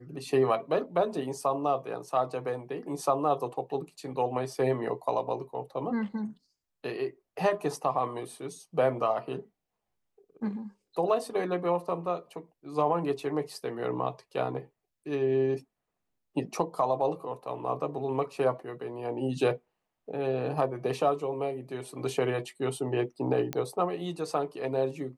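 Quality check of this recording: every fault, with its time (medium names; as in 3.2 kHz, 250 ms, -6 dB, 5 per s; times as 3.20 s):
23.53 s: pop -16 dBFS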